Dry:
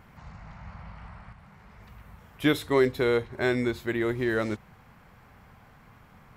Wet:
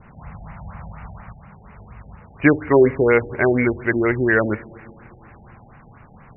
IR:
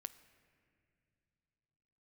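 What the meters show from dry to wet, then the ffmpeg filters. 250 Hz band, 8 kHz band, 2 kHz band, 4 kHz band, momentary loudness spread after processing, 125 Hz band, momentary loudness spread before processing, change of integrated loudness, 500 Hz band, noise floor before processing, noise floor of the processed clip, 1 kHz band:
+8.5 dB, under -30 dB, +10.0 dB, under -15 dB, 22 LU, +8.5 dB, 22 LU, +8.5 dB, +8.5 dB, -55 dBFS, -47 dBFS, +9.0 dB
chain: -filter_complex "[0:a]adynamicequalizer=threshold=0.00501:dfrequency=2200:dqfactor=0.99:tfrequency=2200:tqfactor=0.99:attack=5:release=100:ratio=0.375:range=4:mode=boostabove:tftype=bell,asplit=2[s0][s1];[1:a]atrim=start_sample=2205,asetrate=43659,aresample=44100[s2];[s1][s2]afir=irnorm=-1:irlink=0,volume=1.68[s3];[s0][s3]amix=inputs=2:normalize=0,afftfilt=real='re*lt(b*sr/1024,840*pow(3000/840,0.5+0.5*sin(2*PI*4.2*pts/sr)))':imag='im*lt(b*sr/1024,840*pow(3000/840,0.5+0.5*sin(2*PI*4.2*pts/sr)))':win_size=1024:overlap=0.75,volume=1.33"

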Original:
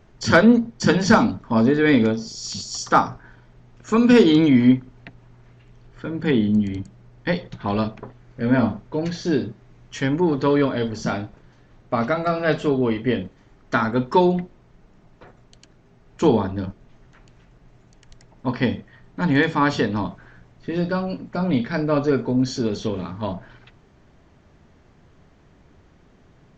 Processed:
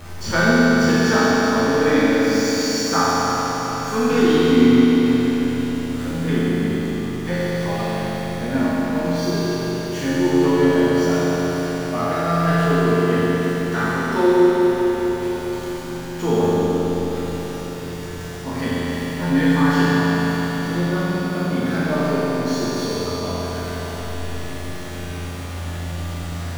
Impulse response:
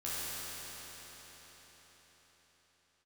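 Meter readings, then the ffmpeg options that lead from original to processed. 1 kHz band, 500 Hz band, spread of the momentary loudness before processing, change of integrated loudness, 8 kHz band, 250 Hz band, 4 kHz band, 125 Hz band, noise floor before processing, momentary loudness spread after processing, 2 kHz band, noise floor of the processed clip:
+2.0 dB, +3.5 dB, 15 LU, +1.0 dB, no reading, +2.0 dB, +4.5 dB, +3.5 dB, -54 dBFS, 14 LU, +3.5 dB, -29 dBFS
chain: -filter_complex "[0:a]aeval=exprs='val(0)+0.5*0.0422*sgn(val(0))':c=same[s0];[1:a]atrim=start_sample=2205[s1];[s0][s1]afir=irnorm=-1:irlink=0,volume=0.631"

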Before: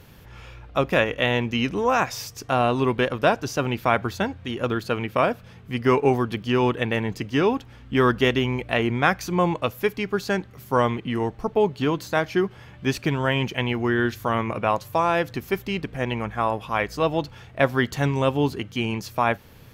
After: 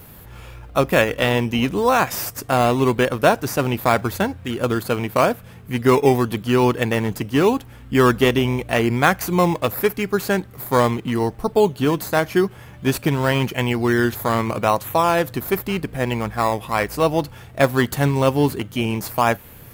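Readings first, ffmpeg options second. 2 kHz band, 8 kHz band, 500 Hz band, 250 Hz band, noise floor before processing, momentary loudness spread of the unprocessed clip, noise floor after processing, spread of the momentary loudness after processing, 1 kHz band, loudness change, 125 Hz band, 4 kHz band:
+2.5 dB, +8.5 dB, +4.0 dB, +4.5 dB, -47 dBFS, 7 LU, -42 dBFS, 6 LU, +3.5 dB, +4.0 dB, +4.5 dB, +2.5 dB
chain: -filter_complex "[0:a]aexciter=amount=4.3:drive=5:freq=7900,asplit=2[s0][s1];[s1]acrusher=samples=12:mix=1:aa=0.000001:lfo=1:lforange=7.2:lforate=0.86,volume=0.398[s2];[s0][s2]amix=inputs=2:normalize=0,volume=1.19"

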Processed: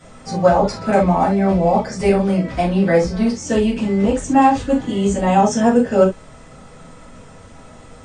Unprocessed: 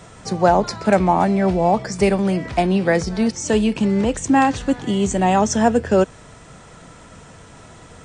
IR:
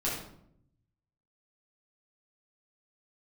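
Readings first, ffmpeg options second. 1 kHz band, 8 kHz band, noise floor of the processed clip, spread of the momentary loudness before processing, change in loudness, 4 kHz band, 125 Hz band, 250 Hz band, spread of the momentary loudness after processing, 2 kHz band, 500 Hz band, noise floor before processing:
+1.5 dB, -3.0 dB, -42 dBFS, 4 LU, +1.5 dB, -2.0 dB, +2.0 dB, +1.5 dB, 5 LU, -1.5 dB, +2.0 dB, -44 dBFS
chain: -filter_complex "[1:a]atrim=start_sample=2205,atrim=end_sample=6615,asetrate=79380,aresample=44100[s0];[0:a][s0]afir=irnorm=-1:irlink=0,volume=0.75"

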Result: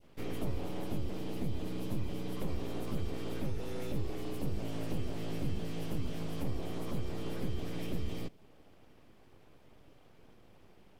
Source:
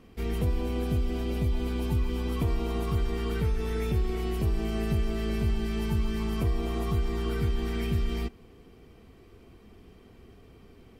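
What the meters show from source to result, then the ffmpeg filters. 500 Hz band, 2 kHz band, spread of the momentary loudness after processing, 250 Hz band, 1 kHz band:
-8.0 dB, -9.0 dB, 2 LU, -7.0 dB, -8.0 dB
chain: -af "aeval=exprs='abs(val(0))':c=same,adynamicequalizer=threshold=0.00224:dfrequency=1400:dqfactor=0.75:tfrequency=1400:tqfactor=0.75:attack=5:release=100:ratio=0.375:range=3:mode=cutabove:tftype=bell,volume=0.562"

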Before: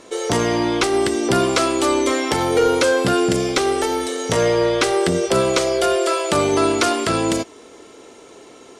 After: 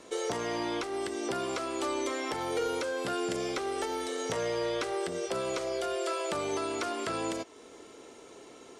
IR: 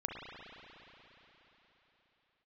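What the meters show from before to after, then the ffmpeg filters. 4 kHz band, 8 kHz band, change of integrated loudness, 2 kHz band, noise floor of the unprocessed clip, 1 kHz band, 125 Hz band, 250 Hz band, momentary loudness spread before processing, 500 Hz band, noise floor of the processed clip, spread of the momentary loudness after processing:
-14.5 dB, -15.0 dB, -14.5 dB, -14.0 dB, -44 dBFS, -13.5 dB, -19.5 dB, -16.0 dB, 4 LU, -14.5 dB, -52 dBFS, 17 LU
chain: -filter_complex "[0:a]acrossover=split=360|2200|7600[s0][s1][s2][s3];[s0]acompressor=threshold=0.02:ratio=4[s4];[s1]acompressor=threshold=0.0794:ratio=4[s5];[s2]acompressor=threshold=0.0224:ratio=4[s6];[s3]acompressor=threshold=0.00631:ratio=4[s7];[s4][s5][s6][s7]amix=inputs=4:normalize=0,alimiter=limit=0.188:level=0:latency=1:release=446,volume=0.422"

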